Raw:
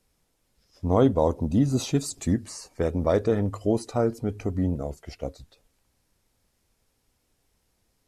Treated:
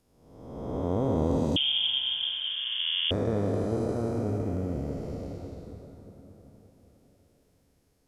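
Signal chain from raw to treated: time blur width 0.671 s; plate-style reverb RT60 4.7 s, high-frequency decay 0.25×, pre-delay 0.115 s, DRR 6.5 dB; 1.56–3.11 inverted band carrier 3400 Hz

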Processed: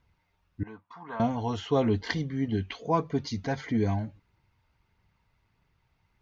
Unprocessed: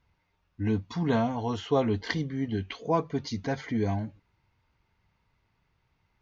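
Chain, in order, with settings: phaser 1.6 Hz, delay 1.6 ms, feedback 22%; 0.63–1.2 band-pass 1100 Hz, Q 2.7

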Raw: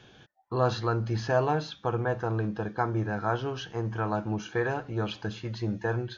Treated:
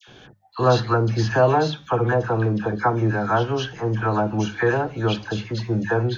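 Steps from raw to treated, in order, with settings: notches 50/100/150/200 Hz; dispersion lows, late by 78 ms, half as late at 1400 Hz; gain +8.5 dB

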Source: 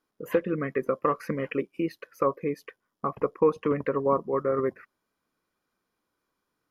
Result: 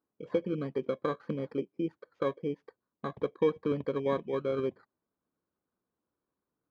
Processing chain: FFT order left unsorted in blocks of 16 samples; HPF 46 Hz; tape spacing loss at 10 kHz 44 dB; gain -2.5 dB

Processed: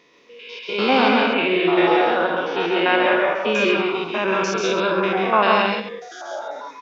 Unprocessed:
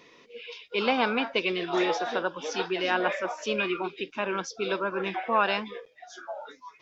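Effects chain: stepped spectrum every 0.1 s; low shelf 91 Hz -5.5 dB; notches 60/120/180 Hz; loudspeakers at several distances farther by 47 m -4 dB, 61 m -5 dB, 91 m -12 dB; AGC gain up to 10.5 dB; 1.33–3.55 LPF 3400 Hz 24 dB/oct

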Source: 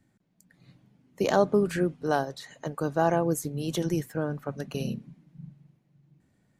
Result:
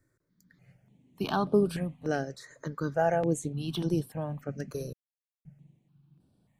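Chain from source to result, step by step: 2.07–4.04 bell 12000 Hz -8 dB 0.37 oct; 4.93–5.45 mute; step phaser 3.4 Hz 780–6800 Hz

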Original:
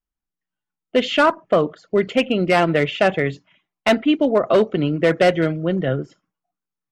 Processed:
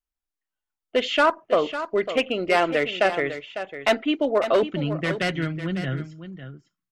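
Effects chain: bell 160 Hz -14 dB 1.2 oct, from 4.63 s 520 Hz; echo 0.551 s -11 dB; gain -2.5 dB

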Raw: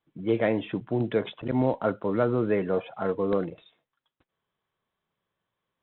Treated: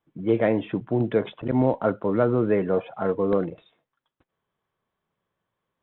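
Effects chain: high shelf 3300 Hz -11.5 dB; gain +3.5 dB

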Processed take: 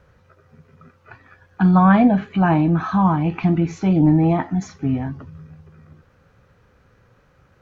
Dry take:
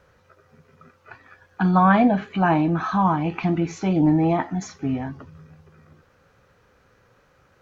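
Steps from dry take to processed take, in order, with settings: tone controls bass +7 dB, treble -3 dB

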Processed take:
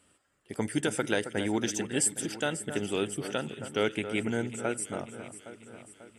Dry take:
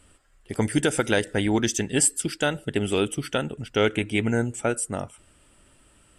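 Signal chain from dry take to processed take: HPF 130 Hz 12 dB/oct; on a send: echo with dull and thin repeats by turns 0.271 s, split 1800 Hz, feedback 73%, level -10 dB; on the sum: gain -6.5 dB

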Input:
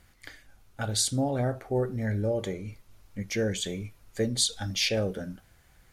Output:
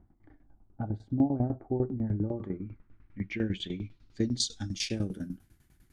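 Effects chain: low-pass sweep 770 Hz -> 12000 Hz, 1.92–5.33; resonant low shelf 400 Hz +7.5 dB, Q 3; tremolo saw down 10 Hz, depth 85%; gain -6 dB

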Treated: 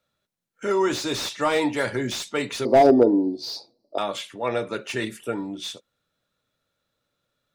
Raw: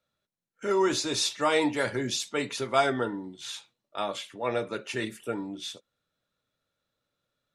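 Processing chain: 2.65–3.98 EQ curve 170 Hz 0 dB, 270 Hz +15 dB, 690 Hz +12 dB, 1500 Hz -20 dB, 2300 Hz -17 dB, 3200 Hz -25 dB, 4600 Hz +15 dB, 7100 Hz -14 dB, 11000 Hz -7 dB; in parallel at -3 dB: compressor, threshold -27 dBFS, peak gain reduction 17.5 dB; on the sum: slew limiter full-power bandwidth 180 Hz

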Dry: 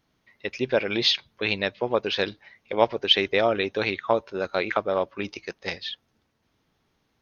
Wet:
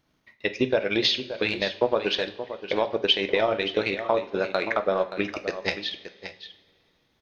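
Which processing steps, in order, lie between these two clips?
limiter -14 dBFS, peak gain reduction 9.5 dB; transient shaper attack +5 dB, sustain -11 dB; echo 0.575 s -11.5 dB; two-slope reverb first 0.38 s, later 2.6 s, from -20 dB, DRR 7.5 dB

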